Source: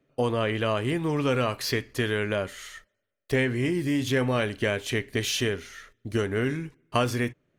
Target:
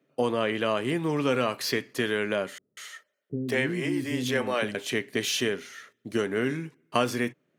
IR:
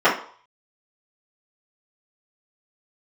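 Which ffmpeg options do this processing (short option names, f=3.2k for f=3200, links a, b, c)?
-filter_complex "[0:a]highpass=f=150:w=0.5412,highpass=f=150:w=1.3066,asettb=1/sr,asplit=3[a][b][c];[a]atrim=end=2.584[d];[b]atrim=start=2.58:end=4.75,asetpts=PTS-STARTPTS,afade=t=in:d=0.004:c=qsin,afade=t=out:st=2.166:d=0.004:c=qsin,acrossover=split=320[e][f];[f]adelay=190[g];[e][g]amix=inputs=2:normalize=0,atrim=end_sample=95697[h];[c]atrim=start=4.746[i];[d][h]acrossfade=d=0.004:c1=hsin:c2=qsin[j];[j][i]acrossfade=d=0.004:c1=qsin:c2=hsin"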